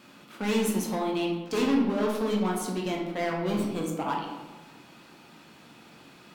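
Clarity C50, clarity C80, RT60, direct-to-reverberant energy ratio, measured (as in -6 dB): 3.0 dB, 5.5 dB, 1.3 s, -2.0 dB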